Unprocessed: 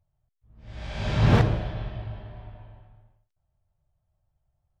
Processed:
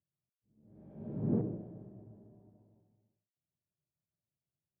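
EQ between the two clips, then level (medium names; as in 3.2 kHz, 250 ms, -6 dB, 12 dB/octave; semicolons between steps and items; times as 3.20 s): Butterworth band-pass 270 Hz, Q 1.1; -6.0 dB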